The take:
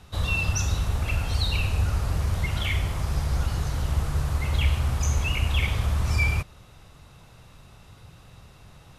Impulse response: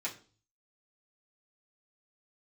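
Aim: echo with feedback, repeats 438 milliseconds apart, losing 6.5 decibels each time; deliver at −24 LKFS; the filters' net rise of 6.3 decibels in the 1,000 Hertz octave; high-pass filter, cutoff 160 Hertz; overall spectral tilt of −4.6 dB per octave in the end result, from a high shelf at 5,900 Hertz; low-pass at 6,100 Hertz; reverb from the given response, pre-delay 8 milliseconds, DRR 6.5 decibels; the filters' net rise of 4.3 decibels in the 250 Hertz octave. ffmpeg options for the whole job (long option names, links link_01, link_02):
-filter_complex "[0:a]highpass=160,lowpass=6100,equalizer=frequency=250:width_type=o:gain=8.5,equalizer=frequency=1000:width_type=o:gain=7.5,highshelf=frequency=5900:gain=-4,aecho=1:1:438|876|1314|1752|2190|2628:0.473|0.222|0.105|0.0491|0.0231|0.0109,asplit=2[link_01][link_02];[1:a]atrim=start_sample=2205,adelay=8[link_03];[link_02][link_03]afir=irnorm=-1:irlink=0,volume=-9dB[link_04];[link_01][link_04]amix=inputs=2:normalize=0,volume=4.5dB"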